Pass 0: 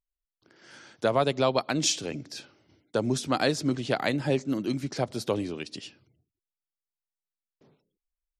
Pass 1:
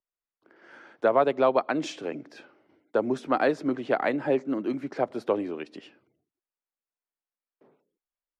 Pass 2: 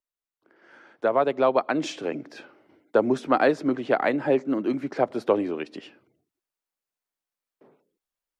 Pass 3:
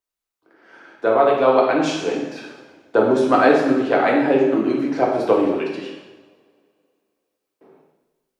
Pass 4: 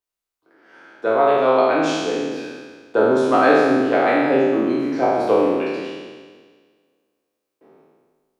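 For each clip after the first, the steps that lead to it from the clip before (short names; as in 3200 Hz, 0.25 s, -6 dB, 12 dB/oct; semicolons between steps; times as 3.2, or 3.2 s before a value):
three-band isolator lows -20 dB, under 240 Hz, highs -22 dB, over 2200 Hz; gain +3.5 dB
vocal rider within 5 dB 2 s; gain +2 dB
two-slope reverb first 1 s, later 2.5 s, from -21 dB, DRR -3 dB; gain +2 dB
spectral trails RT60 1.59 s; gain -3.5 dB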